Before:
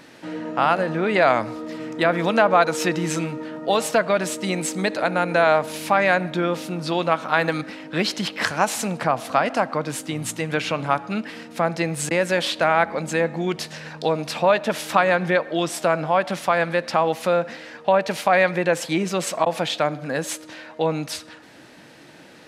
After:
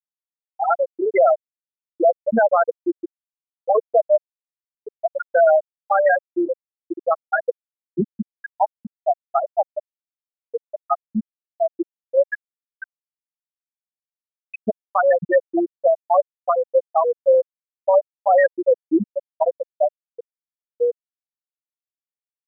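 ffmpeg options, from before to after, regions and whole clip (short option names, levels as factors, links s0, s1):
-filter_complex "[0:a]asettb=1/sr,asplit=3[s0][s1][s2];[s0]atrim=end=12.284[s3];[s1]atrim=start=12.28:end=14.67,asetpts=PTS-STARTPTS,afade=t=in:d=0.004:c=qsin,afade=t=out:st=2.386:d=0.004:c=qsin,highpass=f=2200:t=q:w=1.6,aecho=1:1:7.1:0.31,atrim=end_sample=105399[s4];[s2]atrim=start=14.666[s5];[s3][s4]acrossfade=d=0.004:c1=hsin:c2=qsin[s6];[s6][s5]acrossfade=d=0.004:c1=qsin:c2=hsin,afftfilt=real='re*gte(hypot(re,im),0.794)':imag='im*gte(hypot(re,im),0.794)':win_size=1024:overlap=0.75,alimiter=limit=0.168:level=0:latency=1:release=49,volume=2.37"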